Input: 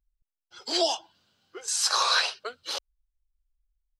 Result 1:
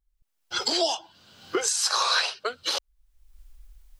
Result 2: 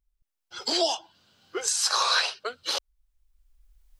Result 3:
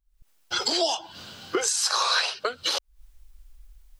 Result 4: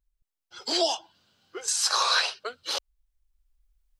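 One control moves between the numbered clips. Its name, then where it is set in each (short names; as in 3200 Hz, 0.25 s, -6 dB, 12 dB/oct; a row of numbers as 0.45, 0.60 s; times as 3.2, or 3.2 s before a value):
recorder AGC, rising by: 37, 15, 90, 5.7 dB/s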